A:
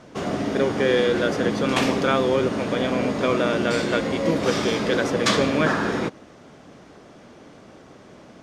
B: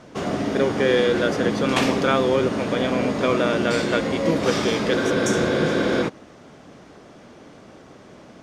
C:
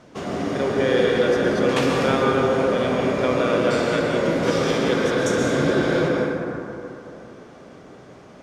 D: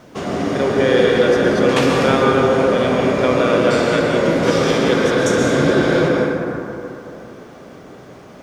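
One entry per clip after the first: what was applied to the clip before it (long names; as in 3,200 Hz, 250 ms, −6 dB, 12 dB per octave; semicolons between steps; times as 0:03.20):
healed spectral selection 0:05.01–0:06.00, 240–5,400 Hz before; level +1 dB
dense smooth reverb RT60 3 s, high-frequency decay 0.35×, pre-delay 110 ms, DRR −1.5 dB; level −3.5 dB
bit-depth reduction 12 bits, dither triangular; level +5 dB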